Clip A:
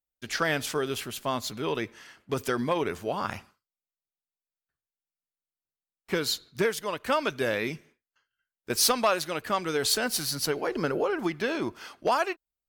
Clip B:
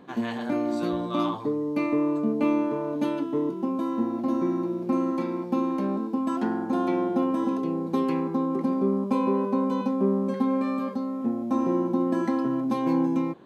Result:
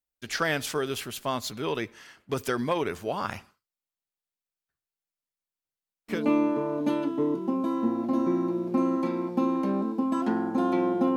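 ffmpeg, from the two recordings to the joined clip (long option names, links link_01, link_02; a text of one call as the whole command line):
ffmpeg -i cue0.wav -i cue1.wav -filter_complex "[0:a]apad=whole_dur=11.16,atrim=end=11.16,atrim=end=6.26,asetpts=PTS-STARTPTS[link_01];[1:a]atrim=start=2.23:end=7.31,asetpts=PTS-STARTPTS[link_02];[link_01][link_02]acrossfade=duration=0.18:curve1=tri:curve2=tri" out.wav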